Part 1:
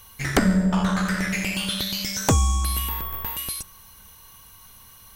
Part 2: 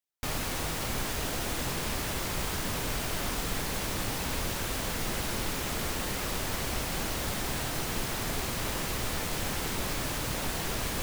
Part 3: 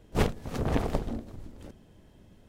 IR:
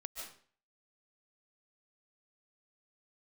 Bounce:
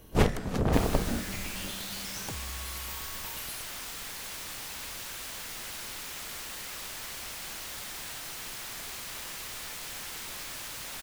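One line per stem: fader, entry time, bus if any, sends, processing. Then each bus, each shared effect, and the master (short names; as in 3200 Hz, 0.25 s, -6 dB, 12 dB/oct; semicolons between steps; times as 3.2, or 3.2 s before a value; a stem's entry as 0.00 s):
-12.0 dB, 0.00 s, no send, compressor, threshold -26 dBFS, peak gain reduction 12 dB
-11.0 dB, 0.50 s, no send, tilt shelf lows -7.5 dB, about 810 Hz
+1.0 dB, 0.00 s, send -10.5 dB, dry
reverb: on, RT60 0.45 s, pre-delay 0.105 s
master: dry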